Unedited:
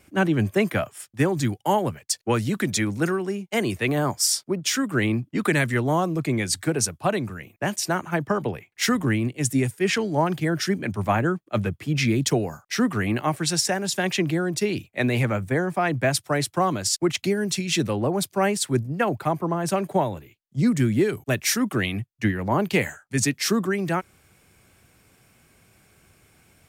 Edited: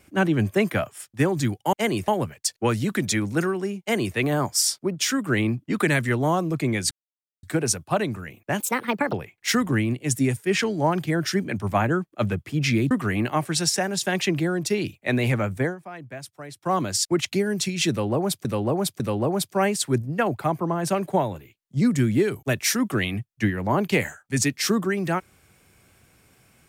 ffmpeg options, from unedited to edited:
-filter_complex "[0:a]asplit=11[a][b][c][d][e][f][g][h][i][j][k];[a]atrim=end=1.732[l];[b]atrim=start=3.458:end=3.812[m];[c]atrim=start=1.728:end=6.56,asetpts=PTS-STARTPTS,afade=t=out:st=4.828:d=0.004:c=hsin,apad=pad_dur=0.52[n];[d]atrim=start=6.56:end=7.734,asetpts=PTS-STARTPTS,afade=t=in:d=0.004:c=hsin[o];[e]atrim=start=7.73:end=8.47,asetpts=PTS-STARTPTS,asetrate=61740,aresample=44100[p];[f]atrim=start=8.466:end=12.252[q];[g]atrim=start=12.818:end=15.68,asetpts=PTS-STARTPTS,afade=t=out:st=2.722:d=0.14:silence=0.16788[r];[h]atrim=start=15.68:end=16.51,asetpts=PTS-STARTPTS,volume=-15.5dB[s];[i]atrim=start=16.51:end=18.362,asetpts=PTS-STARTPTS,afade=t=in:d=0.14:silence=0.16788[t];[j]atrim=start=17.808:end=18.362[u];[k]atrim=start=17.808[v];[l][m]acrossfade=d=0.004:c1=hsin:c2=hsin[w];[n][o]concat=n=2:v=0:a=1[x];[w][x]acrossfade=d=0.004:c1=hsin:c2=hsin[y];[y][p]acrossfade=d=0.004:c1=hsin:c2=hsin[z];[z][q]acrossfade=d=0.004:c1=hsin:c2=hsin[aa];[r][s][t]concat=n=3:v=0:a=1[ab];[aa][ab]acrossfade=d=0.004:c1=hsin:c2=hsin[ac];[ac][u]acrossfade=d=0.004:c1=hsin:c2=hsin[ad];[ad][v]acrossfade=d=0.004:c1=hsin:c2=hsin"

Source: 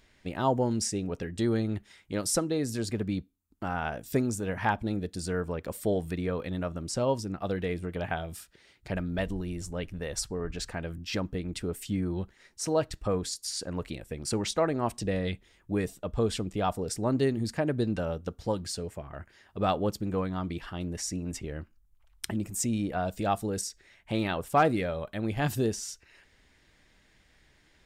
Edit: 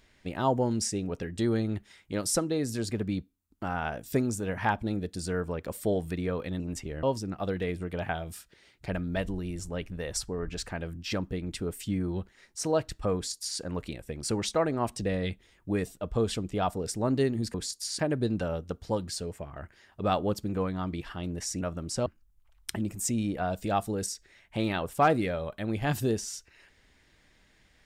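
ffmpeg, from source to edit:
-filter_complex "[0:a]asplit=7[a][b][c][d][e][f][g];[a]atrim=end=6.602[h];[b]atrim=start=21.178:end=21.612[i];[c]atrim=start=7.048:end=17.562[j];[d]atrim=start=13.168:end=13.622[k];[e]atrim=start=17.558:end=21.182[l];[f]atrim=start=6.598:end=7.052[m];[g]atrim=start=21.608[n];[h][i]acrossfade=d=0.004:c1=hsin:c2=hsin[o];[o][j]acrossfade=d=0.004:c1=hsin:c2=hsin[p];[p][k]acrossfade=d=0.004:c1=hsin:c2=hsin[q];[q][l]acrossfade=d=0.004:c1=hsin:c2=hsin[r];[r][m]acrossfade=d=0.004:c1=hsin:c2=hsin[s];[s][n]acrossfade=d=0.004:c1=hsin:c2=hsin"

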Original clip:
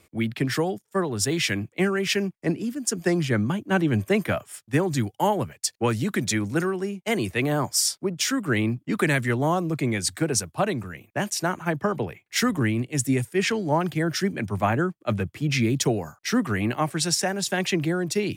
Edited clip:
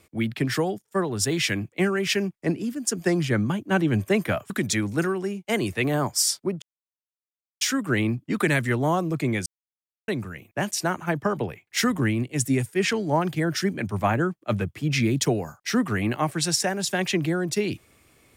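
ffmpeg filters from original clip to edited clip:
-filter_complex "[0:a]asplit=5[a][b][c][d][e];[a]atrim=end=4.502[f];[b]atrim=start=6.078:end=8.2,asetpts=PTS-STARTPTS,afade=t=out:st=2.118:d=0.004:c=hsin,apad=pad_dur=0.99[g];[c]atrim=start=8.2:end=10.05,asetpts=PTS-STARTPTS,afade=t=in:d=0.004:c=hsin,afade=t=out:st=1.846:d=0.004:c=hsin[h];[d]atrim=start=10.05:end=10.67,asetpts=PTS-STARTPTS,volume=0[i];[e]atrim=start=10.67,asetpts=PTS-STARTPTS,afade=t=in:d=0.004:c=hsin[j];[g][h][i][j]concat=n=4:v=0:a=1[k];[f][k]acrossfade=d=0.004:c1=hsin:c2=hsin"

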